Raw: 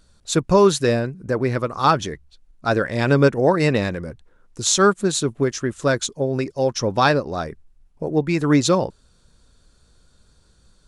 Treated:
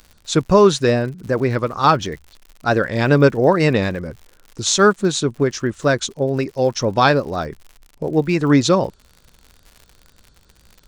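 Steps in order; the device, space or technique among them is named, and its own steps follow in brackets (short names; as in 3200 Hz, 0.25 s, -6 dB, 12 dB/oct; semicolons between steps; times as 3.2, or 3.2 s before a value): lo-fi chain (LPF 6800 Hz 12 dB/oct; wow and flutter; crackle 85/s -35 dBFS); gain +2.5 dB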